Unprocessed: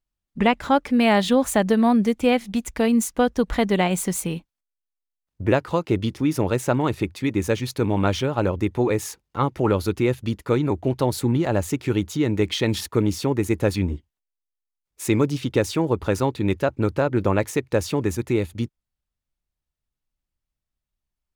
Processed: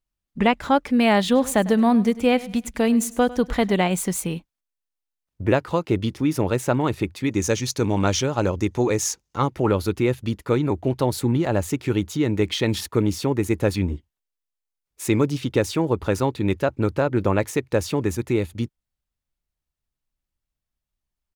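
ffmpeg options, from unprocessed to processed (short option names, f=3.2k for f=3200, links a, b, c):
-filter_complex "[0:a]asplit=3[a][b][c];[a]afade=t=out:st=1.34:d=0.02[d];[b]aecho=1:1:101|202|303:0.119|0.0404|0.0137,afade=t=in:st=1.34:d=0.02,afade=t=out:st=3.74:d=0.02[e];[c]afade=t=in:st=3.74:d=0.02[f];[d][e][f]amix=inputs=3:normalize=0,asettb=1/sr,asplit=3[g][h][i];[g]atrim=end=7.314[j];[h]atrim=start=7.31:end=9.48,asetpts=PTS-STARTPTS,afade=t=in:d=0.004:c=qsin,afade=t=out:st=2.166:d=0.004:c=qsin,equalizer=f=6.2k:w=1.7:g=12.5[k];[i]atrim=start=9.476[l];[j][k]acrossfade=d=0.004:c1=hsin:c2=qsin[m];[m][l]acrossfade=d=0.004:c1=qsin:c2=hsin"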